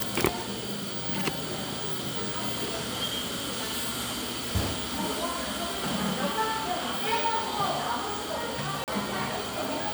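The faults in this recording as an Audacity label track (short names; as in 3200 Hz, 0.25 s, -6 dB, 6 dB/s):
8.840000	8.880000	gap 38 ms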